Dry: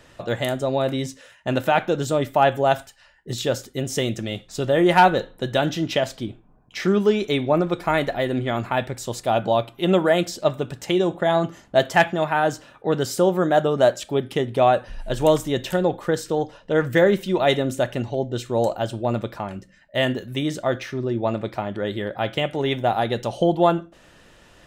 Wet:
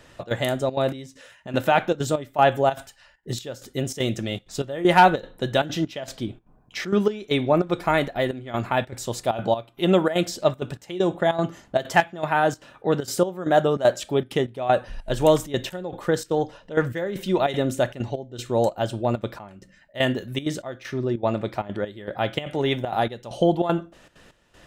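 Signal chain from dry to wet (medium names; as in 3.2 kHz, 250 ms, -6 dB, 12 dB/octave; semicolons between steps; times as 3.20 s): trance gate "xxx.xxxxx.xx...x" 195 bpm -12 dB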